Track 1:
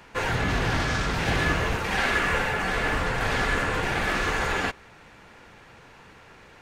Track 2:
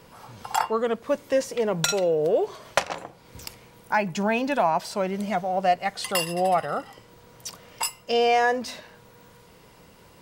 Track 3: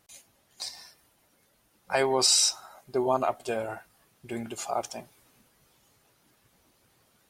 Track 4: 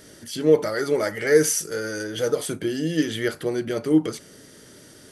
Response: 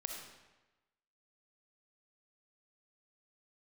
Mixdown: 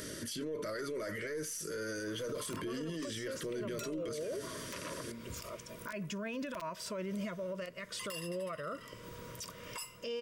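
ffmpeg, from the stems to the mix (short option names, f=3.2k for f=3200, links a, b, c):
-filter_complex "[1:a]bandreject=f=4.2k:w=9.6,adelay=1950,volume=-2.5dB[a];[2:a]adelay=750,volume=-13dB[b];[3:a]volume=2dB[c];[a]aeval=exprs='(mod(5.01*val(0)+1,2)-1)/5.01':c=same,acompressor=threshold=-31dB:ratio=6,volume=0dB[d];[b][c]amix=inputs=2:normalize=0,aeval=exprs='0.841*(cos(1*acos(clip(val(0)/0.841,-1,1)))-cos(1*PI/2))+0.0266*(cos(6*acos(clip(val(0)/0.841,-1,1)))-cos(6*PI/2))':c=same,acompressor=threshold=-24dB:ratio=5,volume=0dB[e];[d][e]amix=inputs=2:normalize=0,acompressor=mode=upward:threshold=-39dB:ratio=2.5,asuperstop=centerf=790:order=12:qfactor=2.9,alimiter=level_in=8dB:limit=-24dB:level=0:latency=1:release=23,volume=-8dB"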